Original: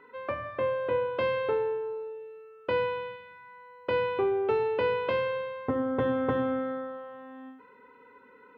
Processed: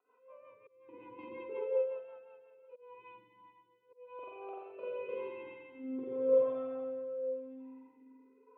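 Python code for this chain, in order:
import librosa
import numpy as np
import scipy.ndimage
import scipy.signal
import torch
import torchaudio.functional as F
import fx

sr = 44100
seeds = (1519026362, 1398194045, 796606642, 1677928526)

y = fx.vibrato(x, sr, rate_hz=3.9, depth_cents=6.2)
y = fx.auto_swell(y, sr, attack_ms=260.0)
y = fx.rev_spring(y, sr, rt60_s=2.3, pass_ms=(42, 46), chirp_ms=80, drr_db=-9.0)
y = fx.rotary_switch(y, sr, hz=5.5, then_hz=0.9, switch_at_s=2.72)
y = fx.auto_swell(y, sr, attack_ms=423.0)
y = fx.vowel_sweep(y, sr, vowels='a-u', hz=0.44)
y = y * librosa.db_to_amplitude(-7.5)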